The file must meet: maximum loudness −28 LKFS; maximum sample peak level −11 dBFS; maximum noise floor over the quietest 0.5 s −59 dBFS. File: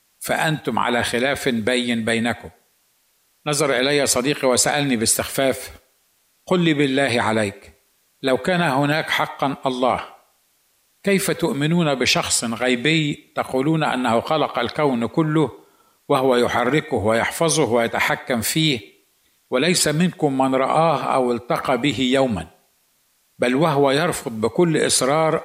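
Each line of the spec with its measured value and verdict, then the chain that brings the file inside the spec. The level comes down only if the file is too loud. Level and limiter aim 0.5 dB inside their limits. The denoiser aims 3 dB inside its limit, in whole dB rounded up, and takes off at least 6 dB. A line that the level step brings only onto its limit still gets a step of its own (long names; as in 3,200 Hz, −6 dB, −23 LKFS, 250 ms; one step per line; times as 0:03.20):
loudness −19.5 LKFS: out of spec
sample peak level −5.5 dBFS: out of spec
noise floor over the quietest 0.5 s −63 dBFS: in spec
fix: level −9 dB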